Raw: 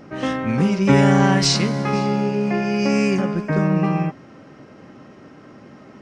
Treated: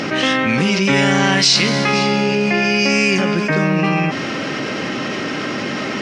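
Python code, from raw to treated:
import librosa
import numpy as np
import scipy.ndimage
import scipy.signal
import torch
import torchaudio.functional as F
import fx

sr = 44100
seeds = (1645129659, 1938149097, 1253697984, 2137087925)

y = fx.weighting(x, sr, curve='D')
y = fx.env_flatten(y, sr, amount_pct=70)
y = y * 10.0 ** (-4.5 / 20.0)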